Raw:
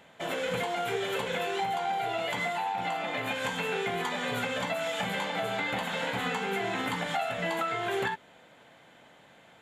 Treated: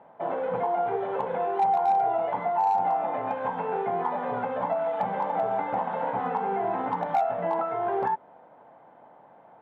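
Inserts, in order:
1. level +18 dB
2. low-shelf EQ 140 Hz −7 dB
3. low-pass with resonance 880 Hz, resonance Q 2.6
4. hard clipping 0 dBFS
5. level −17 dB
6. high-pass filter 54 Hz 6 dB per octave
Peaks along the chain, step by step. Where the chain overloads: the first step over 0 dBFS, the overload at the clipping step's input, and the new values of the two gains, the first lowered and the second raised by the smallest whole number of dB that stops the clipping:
+0.5, +0.5, +3.5, 0.0, −17.0, −16.5 dBFS
step 1, 3.5 dB
step 1 +14 dB, step 5 −13 dB

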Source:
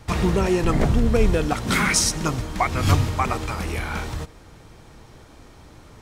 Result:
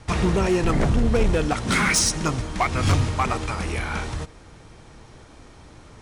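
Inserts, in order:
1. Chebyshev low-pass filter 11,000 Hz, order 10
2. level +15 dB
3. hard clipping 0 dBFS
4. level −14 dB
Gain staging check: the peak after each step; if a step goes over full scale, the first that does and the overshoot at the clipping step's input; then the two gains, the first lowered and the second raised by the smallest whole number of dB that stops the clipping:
−6.5, +8.5, 0.0, −14.0 dBFS
step 2, 8.5 dB
step 2 +6 dB, step 4 −5 dB

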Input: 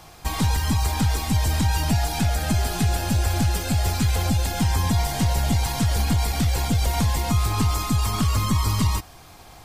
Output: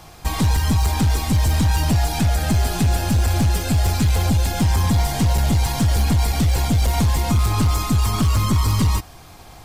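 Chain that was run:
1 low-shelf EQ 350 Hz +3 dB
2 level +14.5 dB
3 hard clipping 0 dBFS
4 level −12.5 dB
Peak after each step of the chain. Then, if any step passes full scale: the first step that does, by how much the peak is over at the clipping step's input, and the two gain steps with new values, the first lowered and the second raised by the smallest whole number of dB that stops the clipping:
−8.0, +6.5, 0.0, −12.5 dBFS
step 2, 6.5 dB
step 2 +7.5 dB, step 4 −5.5 dB

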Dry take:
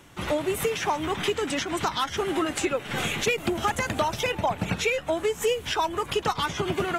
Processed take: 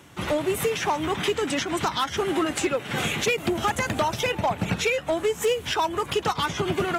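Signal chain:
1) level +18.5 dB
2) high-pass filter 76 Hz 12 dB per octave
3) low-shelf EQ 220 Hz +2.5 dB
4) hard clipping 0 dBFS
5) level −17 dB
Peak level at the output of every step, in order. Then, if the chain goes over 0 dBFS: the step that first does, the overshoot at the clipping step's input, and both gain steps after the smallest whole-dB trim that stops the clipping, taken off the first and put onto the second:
+6.0, +6.0, +6.5, 0.0, −17.0 dBFS
step 1, 6.5 dB
step 1 +11.5 dB, step 5 −10 dB

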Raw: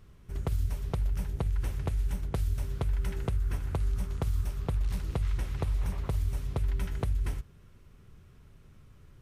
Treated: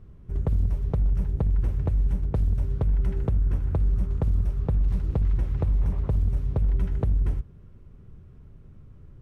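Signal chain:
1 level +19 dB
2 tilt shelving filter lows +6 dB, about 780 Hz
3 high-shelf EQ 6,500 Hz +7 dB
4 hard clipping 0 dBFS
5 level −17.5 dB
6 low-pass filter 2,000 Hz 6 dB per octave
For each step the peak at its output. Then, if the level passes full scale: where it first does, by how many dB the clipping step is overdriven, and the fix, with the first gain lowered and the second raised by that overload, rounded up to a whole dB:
−2.0, +4.0, +4.0, 0.0, −17.5, −17.5 dBFS
step 2, 4.0 dB
step 1 +15 dB, step 5 −13.5 dB

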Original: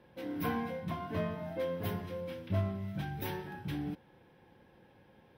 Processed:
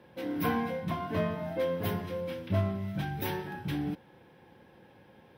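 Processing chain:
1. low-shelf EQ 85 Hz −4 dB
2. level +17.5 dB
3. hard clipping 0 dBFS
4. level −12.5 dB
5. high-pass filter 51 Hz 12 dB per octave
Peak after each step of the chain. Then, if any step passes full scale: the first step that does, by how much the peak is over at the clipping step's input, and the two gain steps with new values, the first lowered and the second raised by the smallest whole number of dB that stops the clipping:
−21.5, −4.0, −4.0, −16.5, −16.0 dBFS
no step passes full scale

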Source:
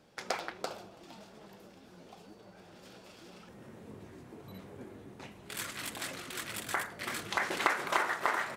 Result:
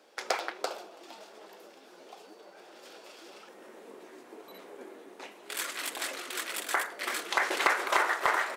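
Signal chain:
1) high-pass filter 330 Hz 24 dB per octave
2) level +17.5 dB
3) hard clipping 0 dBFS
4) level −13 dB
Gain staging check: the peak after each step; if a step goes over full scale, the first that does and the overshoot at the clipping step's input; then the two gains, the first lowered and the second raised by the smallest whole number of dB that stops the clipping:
−9.0, +8.5, 0.0, −13.0 dBFS
step 2, 8.5 dB
step 2 +8.5 dB, step 4 −4 dB

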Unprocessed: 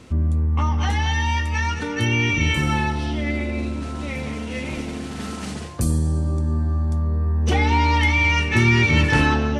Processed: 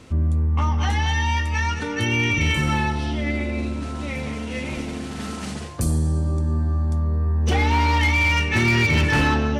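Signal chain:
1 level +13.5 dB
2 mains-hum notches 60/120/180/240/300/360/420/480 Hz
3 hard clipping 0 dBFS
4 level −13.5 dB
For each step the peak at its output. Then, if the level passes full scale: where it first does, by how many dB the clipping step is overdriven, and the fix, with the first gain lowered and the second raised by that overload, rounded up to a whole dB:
+8.5, +8.0, 0.0, −13.5 dBFS
step 1, 8.0 dB
step 1 +5.5 dB, step 4 −5.5 dB

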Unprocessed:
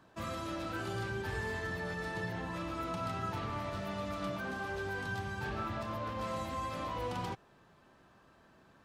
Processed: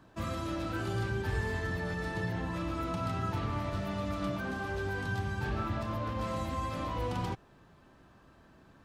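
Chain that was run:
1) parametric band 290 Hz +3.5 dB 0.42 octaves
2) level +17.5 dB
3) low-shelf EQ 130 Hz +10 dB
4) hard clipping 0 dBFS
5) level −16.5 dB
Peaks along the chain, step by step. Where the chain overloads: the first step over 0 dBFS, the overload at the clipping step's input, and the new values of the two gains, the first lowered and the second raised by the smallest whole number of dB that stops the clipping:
−26.5, −9.0, −4.5, −4.5, −21.0 dBFS
no step passes full scale

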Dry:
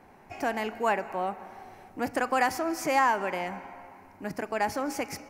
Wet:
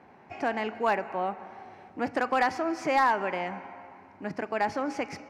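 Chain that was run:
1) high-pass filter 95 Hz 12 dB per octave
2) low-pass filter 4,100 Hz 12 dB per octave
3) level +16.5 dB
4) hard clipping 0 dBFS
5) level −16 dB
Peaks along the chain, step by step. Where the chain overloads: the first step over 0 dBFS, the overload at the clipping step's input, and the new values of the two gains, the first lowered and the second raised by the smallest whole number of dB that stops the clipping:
−11.5, −11.5, +5.0, 0.0, −16.0 dBFS
step 3, 5.0 dB
step 3 +11.5 dB, step 5 −11 dB

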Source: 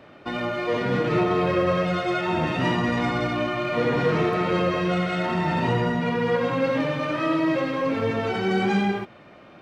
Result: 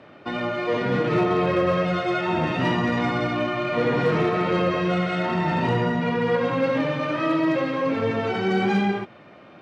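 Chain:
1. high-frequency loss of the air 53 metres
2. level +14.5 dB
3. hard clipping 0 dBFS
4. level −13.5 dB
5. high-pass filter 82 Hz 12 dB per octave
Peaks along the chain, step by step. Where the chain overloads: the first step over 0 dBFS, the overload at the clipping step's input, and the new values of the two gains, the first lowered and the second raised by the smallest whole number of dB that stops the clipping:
−11.5, +3.0, 0.0, −13.5, −10.5 dBFS
step 2, 3.0 dB
step 2 +11.5 dB, step 4 −10.5 dB

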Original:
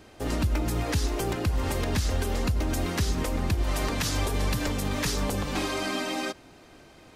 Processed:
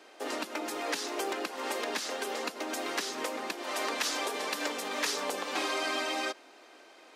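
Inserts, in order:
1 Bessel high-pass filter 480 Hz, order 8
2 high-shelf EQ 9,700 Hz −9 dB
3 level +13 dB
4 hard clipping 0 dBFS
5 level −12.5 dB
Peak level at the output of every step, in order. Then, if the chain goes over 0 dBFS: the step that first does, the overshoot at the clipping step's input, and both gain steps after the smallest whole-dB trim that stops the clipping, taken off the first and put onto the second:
−16.0, −16.5, −3.5, −3.5, −16.0 dBFS
no step passes full scale

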